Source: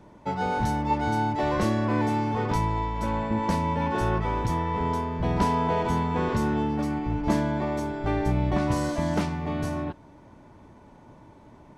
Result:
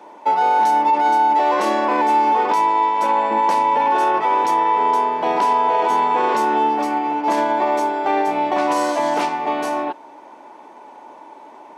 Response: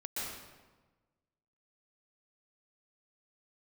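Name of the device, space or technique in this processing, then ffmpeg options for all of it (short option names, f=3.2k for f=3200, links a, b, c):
laptop speaker: -af "highpass=f=320:w=0.5412,highpass=f=320:w=1.3066,equalizer=f=850:t=o:w=0.59:g=9.5,equalizer=f=2.6k:t=o:w=0.59:g=4,alimiter=limit=-17.5dB:level=0:latency=1:release=27,volume=8dB"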